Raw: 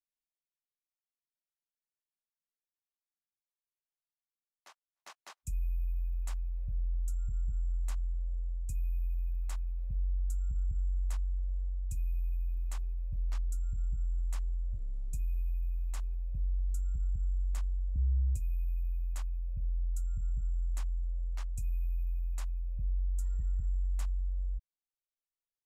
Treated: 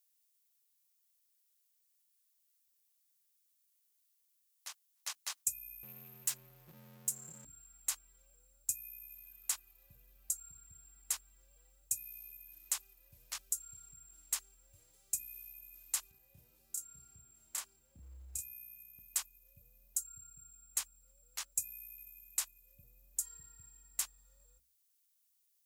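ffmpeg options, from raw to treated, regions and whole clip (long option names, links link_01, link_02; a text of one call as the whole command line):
ffmpeg -i in.wav -filter_complex "[0:a]asettb=1/sr,asplit=3[link_01][link_02][link_03];[link_01]atrim=end=5.834[link_04];[link_02]atrim=start=5.83:end=7.45,asetpts=PTS-STARTPTS,afade=type=in:duration=0.004:curve=qsin,afade=type=out:start_time=1.616:duration=0.004:curve=qsin,equalizer=frequency=580:width=0.43:gain=-6.5,aeval=exprs='0.0158*(abs(mod(val(0)/0.0158+3,4)-2)-1)':channel_layout=same,aecho=1:1:5.6:0.49,atrim=end_sample=71442[link_05];[link_03]atrim=start=7.446[link_06];[link_04][link_05]acrossfade=duration=0.004:curve1=hsin:curve2=qsin[link_07];[link_07][link_06]acrossfade=duration=0.004:curve1=qsin:curve2=hsin,asettb=1/sr,asplit=3[link_08][link_09][link_10];[link_08]atrim=end=16.114[link_11];[link_09]atrim=start=16.11:end=18.99,asetpts=PTS-STARTPTS,afade=type=in:duration=0.004:curve=qsin,afade=type=out:start_time=2.876:duration=0.004:curve=qsin,highpass=frequency=53:width=0.5412,highpass=frequency=53:width=1.3066,highshelf=frequency=2300:gain=-6,asplit=2[link_12][link_13];[link_13]adelay=31,volume=-2dB[link_14];[link_12][link_14]amix=inputs=2:normalize=0,atrim=end_sample=127008[link_15];[link_10]atrim=start=18.986[link_16];[link_11][link_15]acrossfade=duration=0.004:curve1=hsin:curve2=qsin[link_17];[link_17][link_16]acrossfade=duration=0.004:curve1=qsin:curve2=hsin,highpass=68,aderivative,bandreject=frequency=60:width_type=h:width=6,bandreject=frequency=120:width_type=h:width=6,bandreject=frequency=180:width_type=h:width=6,bandreject=frequency=240:width_type=h:width=6,bandreject=frequency=300:width_type=h:width=6,volume=17dB" out.wav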